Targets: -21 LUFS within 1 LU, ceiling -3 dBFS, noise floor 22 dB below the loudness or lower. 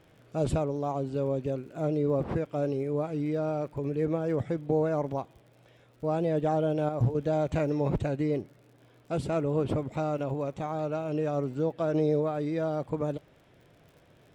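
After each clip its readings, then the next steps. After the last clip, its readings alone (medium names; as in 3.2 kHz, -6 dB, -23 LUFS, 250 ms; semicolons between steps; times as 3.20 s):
tick rate 56 per s; loudness -30.0 LUFS; peak level -15.0 dBFS; loudness target -21.0 LUFS
-> de-click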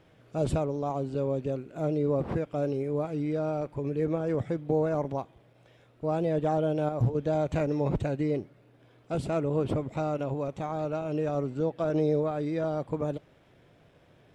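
tick rate 0.14 per s; loudness -30.0 LUFS; peak level -15.0 dBFS; loudness target -21.0 LUFS
-> trim +9 dB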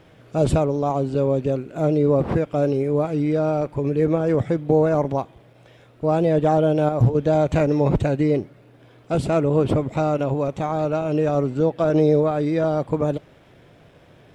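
loudness -21.0 LUFS; peak level -6.0 dBFS; noise floor -51 dBFS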